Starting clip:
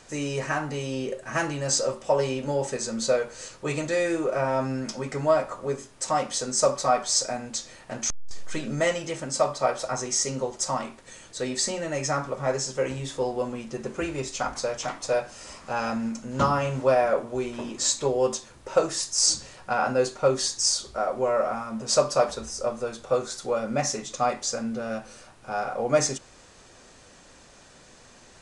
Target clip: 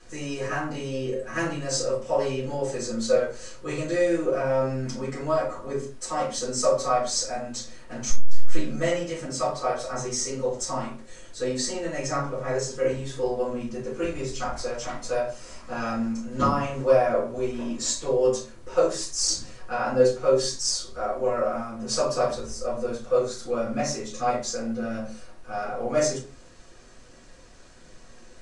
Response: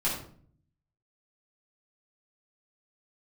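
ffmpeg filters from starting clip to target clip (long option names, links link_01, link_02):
-filter_complex "[0:a]aphaser=in_gain=1:out_gain=1:delay=2.7:decay=0.22:speed=1.4:type=triangular[link_01];[1:a]atrim=start_sample=2205,afade=type=out:start_time=0.43:duration=0.01,atrim=end_sample=19404,asetrate=79380,aresample=44100[link_02];[link_01][link_02]afir=irnorm=-1:irlink=0,volume=-6dB"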